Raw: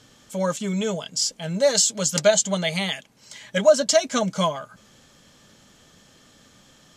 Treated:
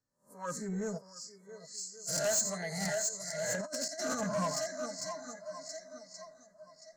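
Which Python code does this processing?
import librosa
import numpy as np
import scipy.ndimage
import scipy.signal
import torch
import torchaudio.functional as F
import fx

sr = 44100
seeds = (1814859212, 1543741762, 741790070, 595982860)

y = fx.spec_swells(x, sr, rise_s=0.54)
y = y + 10.0 ** (-12.5 / 20.0) * np.pad(y, (int(88 * sr / 1000.0), 0))[:len(y)]
y = fx.dynamic_eq(y, sr, hz=640.0, q=0.86, threshold_db=-26.0, ratio=4.0, max_db=-4)
y = scipy.signal.sosfilt(scipy.signal.cheby1(4, 1.0, [2000.0, 4200.0], 'bandstop', fs=sr, output='sos'), y)
y = fx.tone_stack(y, sr, knobs='6-0-2', at=(0.97, 2.07), fade=0.02)
y = fx.echo_swing(y, sr, ms=1126, ratio=1.5, feedback_pct=46, wet_db=-8.0)
y = fx.noise_reduce_blind(y, sr, reduce_db=13)
y = fx.over_compress(y, sr, threshold_db=-24.0, ratio=-0.5, at=(2.8, 4.24))
y = 10.0 ** (-19.5 / 20.0) * np.tanh(y / 10.0 ** (-19.5 / 20.0))
y = fx.band_widen(y, sr, depth_pct=40)
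y = y * 10.0 ** (-8.5 / 20.0)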